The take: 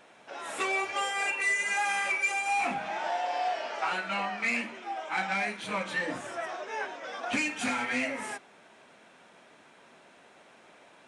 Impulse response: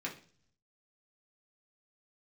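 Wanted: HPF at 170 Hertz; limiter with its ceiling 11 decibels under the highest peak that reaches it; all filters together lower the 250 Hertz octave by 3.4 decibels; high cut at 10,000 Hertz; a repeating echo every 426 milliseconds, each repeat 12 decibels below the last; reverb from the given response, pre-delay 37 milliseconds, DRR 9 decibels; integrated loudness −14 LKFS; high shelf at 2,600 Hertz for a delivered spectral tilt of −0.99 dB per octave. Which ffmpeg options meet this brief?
-filter_complex "[0:a]highpass=170,lowpass=10000,equalizer=frequency=250:width_type=o:gain=-3,highshelf=frequency=2600:gain=4.5,alimiter=level_in=2.5dB:limit=-24dB:level=0:latency=1,volume=-2.5dB,aecho=1:1:426|852|1278:0.251|0.0628|0.0157,asplit=2[link_01][link_02];[1:a]atrim=start_sample=2205,adelay=37[link_03];[link_02][link_03]afir=irnorm=-1:irlink=0,volume=-11dB[link_04];[link_01][link_04]amix=inputs=2:normalize=0,volume=19.5dB"

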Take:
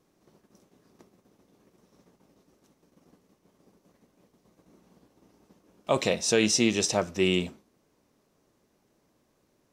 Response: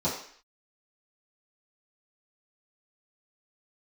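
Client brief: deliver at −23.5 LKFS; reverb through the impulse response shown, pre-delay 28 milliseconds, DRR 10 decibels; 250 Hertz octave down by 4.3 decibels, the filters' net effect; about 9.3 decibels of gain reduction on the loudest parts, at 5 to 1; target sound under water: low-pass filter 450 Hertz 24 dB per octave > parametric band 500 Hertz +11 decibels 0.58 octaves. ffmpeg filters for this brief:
-filter_complex "[0:a]equalizer=frequency=250:width_type=o:gain=-8.5,acompressor=threshold=-31dB:ratio=5,asplit=2[link_01][link_02];[1:a]atrim=start_sample=2205,adelay=28[link_03];[link_02][link_03]afir=irnorm=-1:irlink=0,volume=-20dB[link_04];[link_01][link_04]amix=inputs=2:normalize=0,lowpass=frequency=450:width=0.5412,lowpass=frequency=450:width=1.3066,equalizer=frequency=500:width_type=o:width=0.58:gain=11,volume=12.5dB"

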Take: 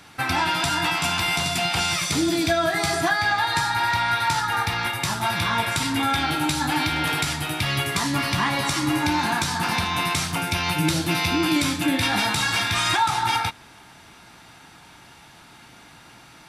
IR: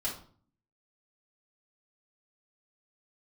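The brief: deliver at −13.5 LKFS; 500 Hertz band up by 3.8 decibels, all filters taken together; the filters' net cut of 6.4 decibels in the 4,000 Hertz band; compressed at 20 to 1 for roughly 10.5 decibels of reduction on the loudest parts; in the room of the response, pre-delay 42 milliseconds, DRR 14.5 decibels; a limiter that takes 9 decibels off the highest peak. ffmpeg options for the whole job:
-filter_complex "[0:a]equalizer=frequency=500:width_type=o:gain=6.5,equalizer=frequency=4000:width_type=o:gain=-8.5,acompressor=threshold=-26dB:ratio=20,alimiter=limit=-24dB:level=0:latency=1,asplit=2[link_01][link_02];[1:a]atrim=start_sample=2205,adelay=42[link_03];[link_02][link_03]afir=irnorm=-1:irlink=0,volume=-18dB[link_04];[link_01][link_04]amix=inputs=2:normalize=0,volume=19dB"

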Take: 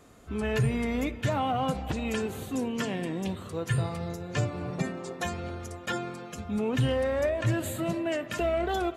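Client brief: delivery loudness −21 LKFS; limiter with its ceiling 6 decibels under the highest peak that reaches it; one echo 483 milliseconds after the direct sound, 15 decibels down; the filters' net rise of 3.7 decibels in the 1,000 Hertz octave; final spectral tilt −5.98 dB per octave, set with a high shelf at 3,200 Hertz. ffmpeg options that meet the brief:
ffmpeg -i in.wav -af "equalizer=frequency=1000:width_type=o:gain=6,highshelf=frequency=3200:gain=-6,alimiter=limit=-22.5dB:level=0:latency=1,aecho=1:1:483:0.178,volume=11dB" out.wav

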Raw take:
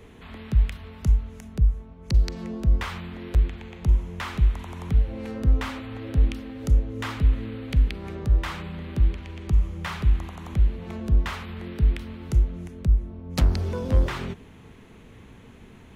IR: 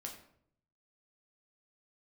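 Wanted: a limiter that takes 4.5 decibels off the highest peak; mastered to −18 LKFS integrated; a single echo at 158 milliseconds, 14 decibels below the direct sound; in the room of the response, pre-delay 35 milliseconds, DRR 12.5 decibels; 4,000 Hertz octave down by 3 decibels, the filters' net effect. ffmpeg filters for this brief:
-filter_complex "[0:a]equalizer=frequency=4000:width_type=o:gain=-4,alimiter=limit=-14dB:level=0:latency=1,aecho=1:1:158:0.2,asplit=2[link_01][link_02];[1:a]atrim=start_sample=2205,adelay=35[link_03];[link_02][link_03]afir=irnorm=-1:irlink=0,volume=-9.5dB[link_04];[link_01][link_04]amix=inputs=2:normalize=0,volume=10dB"

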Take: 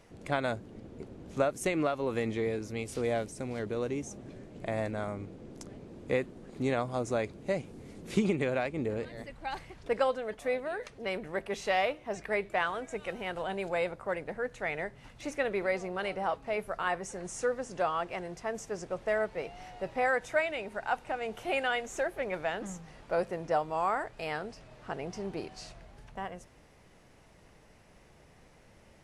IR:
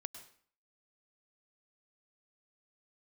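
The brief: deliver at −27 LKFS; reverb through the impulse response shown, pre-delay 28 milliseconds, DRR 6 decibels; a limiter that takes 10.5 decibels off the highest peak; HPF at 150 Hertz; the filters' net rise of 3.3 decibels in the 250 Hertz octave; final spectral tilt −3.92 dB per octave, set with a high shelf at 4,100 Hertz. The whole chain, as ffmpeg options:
-filter_complex "[0:a]highpass=150,equalizer=frequency=250:width_type=o:gain=5,highshelf=frequency=4100:gain=8.5,alimiter=limit=-23.5dB:level=0:latency=1,asplit=2[link_01][link_02];[1:a]atrim=start_sample=2205,adelay=28[link_03];[link_02][link_03]afir=irnorm=-1:irlink=0,volume=-3dB[link_04];[link_01][link_04]amix=inputs=2:normalize=0,volume=7.5dB"

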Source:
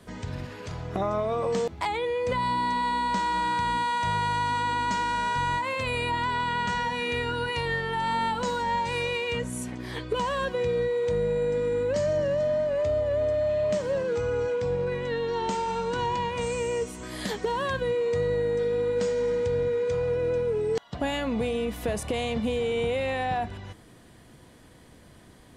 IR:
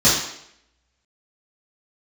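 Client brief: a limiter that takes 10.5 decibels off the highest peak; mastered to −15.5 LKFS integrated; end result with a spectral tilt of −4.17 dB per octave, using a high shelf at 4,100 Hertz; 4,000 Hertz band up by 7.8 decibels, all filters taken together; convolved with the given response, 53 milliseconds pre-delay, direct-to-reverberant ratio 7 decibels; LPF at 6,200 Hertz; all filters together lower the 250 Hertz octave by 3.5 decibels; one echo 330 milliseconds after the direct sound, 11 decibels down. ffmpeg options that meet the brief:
-filter_complex "[0:a]lowpass=6200,equalizer=frequency=250:width_type=o:gain=-4.5,equalizer=frequency=4000:width_type=o:gain=7,highshelf=frequency=4100:gain=7,alimiter=level_in=0.5dB:limit=-24dB:level=0:latency=1,volume=-0.5dB,aecho=1:1:330:0.282,asplit=2[link_01][link_02];[1:a]atrim=start_sample=2205,adelay=53[link_03];[link_02][link_03]afir=irnorm=-1:irlink=0,volume=-28dB[link_04];[link_01][link_04]amix=inputs=2:normalize=0,volume=14.5dB"

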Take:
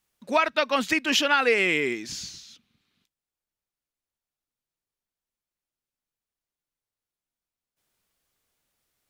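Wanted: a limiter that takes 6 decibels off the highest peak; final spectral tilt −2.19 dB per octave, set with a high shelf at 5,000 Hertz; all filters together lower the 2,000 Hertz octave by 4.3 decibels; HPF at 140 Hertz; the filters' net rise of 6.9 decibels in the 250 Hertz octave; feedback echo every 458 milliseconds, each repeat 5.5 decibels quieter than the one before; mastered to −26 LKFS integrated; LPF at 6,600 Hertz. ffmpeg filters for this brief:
ffmpeg -i in.wav -af "highpass=140,lowpass=6600,equalizer=frequency=250:width_type=o:gain=9,equalizer=frequency=2000:width_type=o:gain=-5,highshelf=frequency=5000:gain=-4,alimiter=limit=-14dB:level=0:latency=1,aecho=1:1:458|916|1374|1832|2290|2748|3206:0.531|0.281|0.149|0.079|0.0419|0.0222|0.0118,volume=-1.5dB" out.wav

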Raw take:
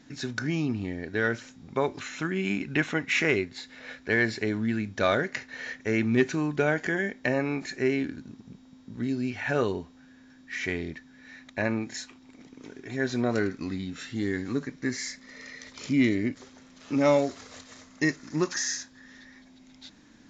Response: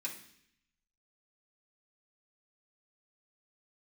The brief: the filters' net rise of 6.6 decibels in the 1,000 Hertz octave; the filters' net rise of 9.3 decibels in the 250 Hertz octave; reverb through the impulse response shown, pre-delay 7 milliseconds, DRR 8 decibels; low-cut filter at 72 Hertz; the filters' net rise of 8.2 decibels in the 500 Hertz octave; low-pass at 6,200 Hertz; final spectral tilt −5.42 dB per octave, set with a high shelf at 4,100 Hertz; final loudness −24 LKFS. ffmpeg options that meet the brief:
-filter_complex "[0:a]highpass=72,lowpass=6200,equalizer=frequency=250:width_type=o:gain=9,equalizer=frequency=500:width_type=o:gain=6,equalizer=frequency=1000:width_type=o:gain=6,highshelf=frequency=4100:gain=4,asplit=2[link_01][link_02];[1:a]atrim=start_sample=2205,adelay=7[link_03];[link_02][link_03]afir=irnorm=-1:irlink=0,volume=-8dB[link_04];[link_01][link_04]amix=inputs=2:normalize=0,volume=-3.5dB"

